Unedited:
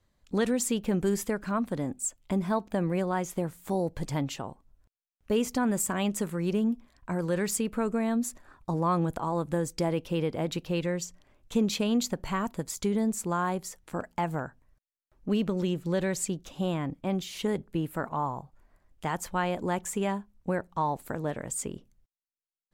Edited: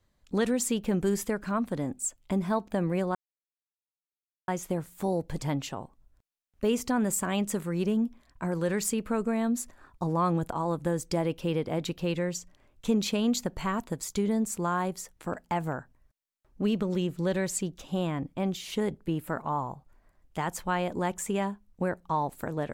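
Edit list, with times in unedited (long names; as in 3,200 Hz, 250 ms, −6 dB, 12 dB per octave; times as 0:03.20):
0:03.15: splice in silence 1.33 s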